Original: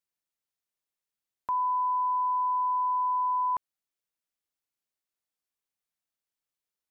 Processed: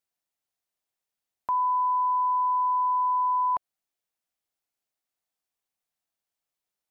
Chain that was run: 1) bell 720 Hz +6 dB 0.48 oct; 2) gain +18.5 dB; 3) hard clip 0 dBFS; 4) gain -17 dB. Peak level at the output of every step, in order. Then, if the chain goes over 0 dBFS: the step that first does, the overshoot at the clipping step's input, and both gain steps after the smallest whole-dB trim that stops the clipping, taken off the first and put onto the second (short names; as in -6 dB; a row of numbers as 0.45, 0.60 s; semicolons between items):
-21.5, -3.0, -3.0, -20.0 dBFS; no overload